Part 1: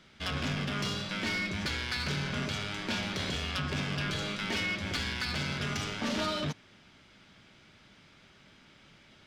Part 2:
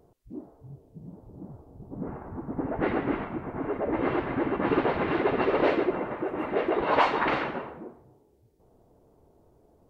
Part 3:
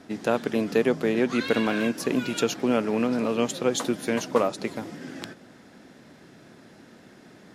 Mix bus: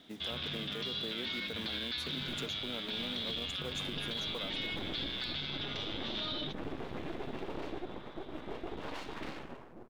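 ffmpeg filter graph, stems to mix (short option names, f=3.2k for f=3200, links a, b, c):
-filter_complex "[0:a]lowpass=f=3.6k:t=q:w=8.9,volume=-10.5dB[a];[1:a]acrossover=split=360|3000[b][c][d];[c]acompressor=threshold=-46dB:ratio=2[e];[b][e][d]amix=inputs=3:normalize=0,aeval=exprs='max(val(0),0)':c=same,adelay=1950,volume=-5dB[f];[2:a]acompressor=threshold=-28dB:ratio=2.5,acrusher=bits=4:mode=log:mix=0:aa=0.000001,volume=-13dB[g];[a][f][g]amix=inputs=3:normalize=0,alimiter=level_in=4dB:limit=-24dB:level=0:latency=1:release=34,volume=-4dB"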